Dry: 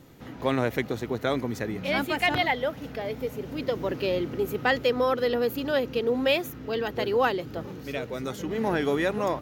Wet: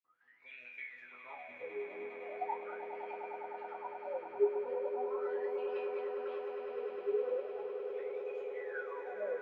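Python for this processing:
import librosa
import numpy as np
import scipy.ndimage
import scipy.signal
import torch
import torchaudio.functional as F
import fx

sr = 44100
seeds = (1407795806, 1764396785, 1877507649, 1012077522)

y = fx.spec_dropout(x, sr, seeds[0], share_pct=21)
y = fx.resonator_bank(y, sr, root=40, chord='major', decay_s=0.58)
y = fx.wah_lfo(y, sr, hz=0.39, low_hz=400.0, high_hz=2500.0, q=21.0)
y = fx.echo_swell(y, sr, ms=102, loudest=8, wet_db=-11.0)
y = y * 10.0 ** (14.0 / 20.0)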